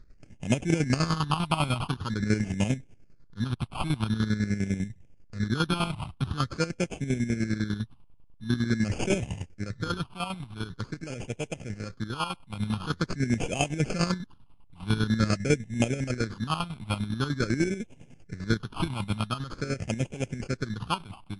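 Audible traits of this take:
aliases and images of a low sample rate 1,900 Hz, jitter 0%
phaser sweep stages 6, 0.46 Hz, lowest notch 460–1,200 Hz
chopped level 10 Hz, depth 65%, duty 40%
MP3

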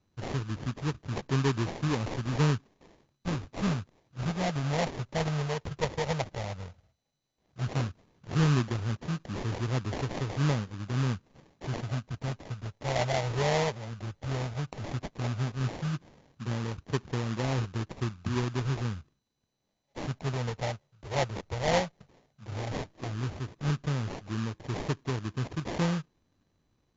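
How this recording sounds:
phaser sweep stages 8, 0.13 Hz, lowest notch 280–1,000 Hz
aliases and images of a low sample rate 1,400 Hz, jitter 20%
MP2

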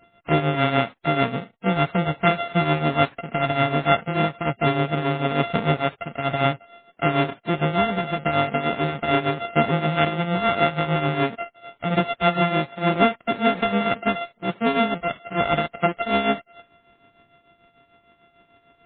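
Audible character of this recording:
a buzz of ramps at a fixed pitch in blocks of 64 samples
tremolo triangle 6.7 Hz, depth 75%
MP3

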